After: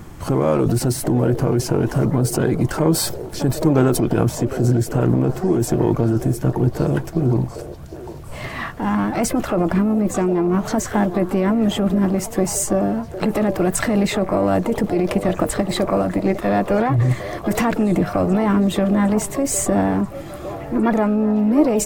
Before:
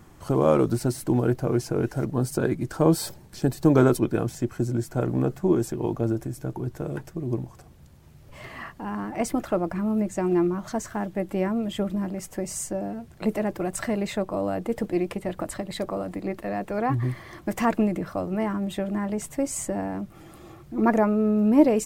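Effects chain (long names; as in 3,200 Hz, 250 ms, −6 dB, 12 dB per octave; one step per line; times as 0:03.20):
pitch-shifted copies added +4 semitones −18 dB, +12 semitones −16 dB
in parallel at +3 dB: compressor whose output falls as the input rises −27 dBFS, ratio −0.5
on the sum: low-shelf EQ 200 Hz +4.5 dB
echo through a band-pass that steps 757 ms, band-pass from 510 Hz, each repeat 0.7 octaves, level −9 dB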